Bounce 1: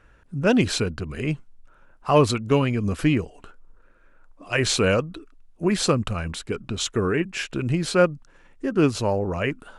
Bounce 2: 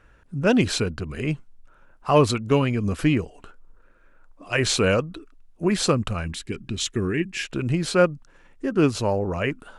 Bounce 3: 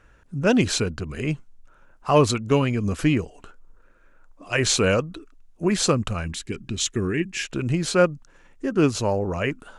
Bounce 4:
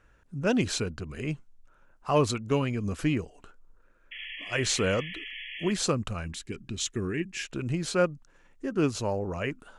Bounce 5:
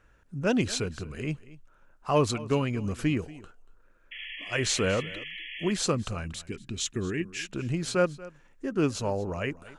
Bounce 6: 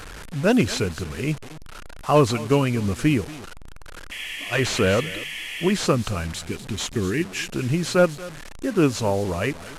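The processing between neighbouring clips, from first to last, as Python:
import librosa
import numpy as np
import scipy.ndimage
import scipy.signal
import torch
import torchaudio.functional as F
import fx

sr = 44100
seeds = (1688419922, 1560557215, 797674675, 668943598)

y1 = fx.spec_box(x, sr, start_s=6.25, length_s=1.2, low_hz=400.0, high_hz=1600.0, gain_db=-9)
y2 = fx.peak_eq(y1, sr, hz=6600.0, db=5.0, octaves=0.51)
y3 = fx.spec_paint(y2, sr, seeds[0], shape='noise', start_s=4.11, length_s=1.62, low_hz=1700.0, high_hz=3400.0, level_db=-34.0)
y3 = y3 * librosa.db_to_amplitude(-6.5)
y4 = y3 + 10.0 ** (-19.0 / 20.0) * np.pad(y3, (int(234 * sr / 1000.0), 0))[:len(y3)]
y5 = fx.delta_mod(y4, sr, bps=64000, step_db=-39.0)
y5 = y5 * librosa.db_to_amplitude(7.0)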